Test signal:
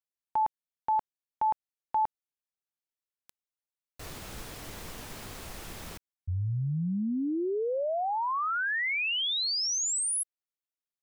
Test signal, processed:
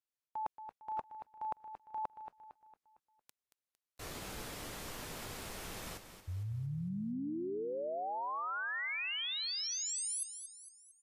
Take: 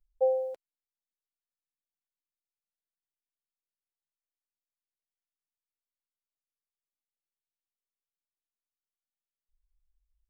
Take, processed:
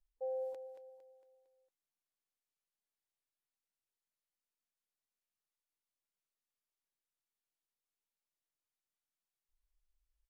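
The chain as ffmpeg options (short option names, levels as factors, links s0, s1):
-af "lowshelf=f=160:g=-4,areverse,acompressor=threshold=0.02:ratio=12:attack=21:release=194:knee=1:detection=rms,areverse,aecho=1:1:228|456|684|912|1140:0.316|0.145|0.0669|0.0308|0.0142,volume=0.708" -ar 32000 -c:a aac -b:a 48k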